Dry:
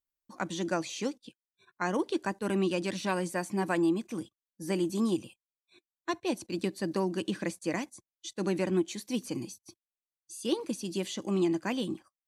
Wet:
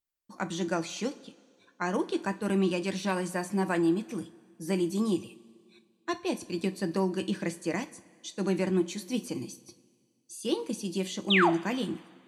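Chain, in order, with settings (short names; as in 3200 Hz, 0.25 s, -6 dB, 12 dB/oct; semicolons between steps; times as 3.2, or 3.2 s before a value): painted sound fall, 11.3–11.5, 600–4000 Hz -24 dBFS; two-slope reverb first 0.27 s, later 2 s, from -18 dB, DRR 8.5 dB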